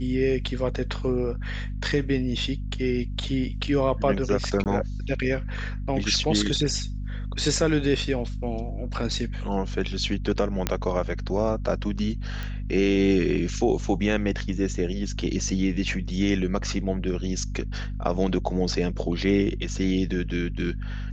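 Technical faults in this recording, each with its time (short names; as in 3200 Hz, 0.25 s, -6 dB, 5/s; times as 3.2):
hum 50 Hz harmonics 5 -31 dBFS
4.64–4.66 gap 18 ms
10.67 pop -7 dBFS
12.43 pop -20 dBFS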